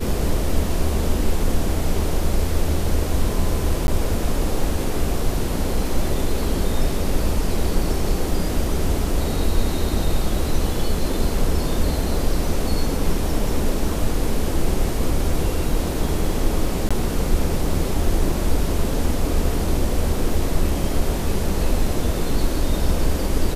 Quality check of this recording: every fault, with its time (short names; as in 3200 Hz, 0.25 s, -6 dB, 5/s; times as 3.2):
3.87–3.88 gap 11 ms
16.89–16.91 gap 16 ms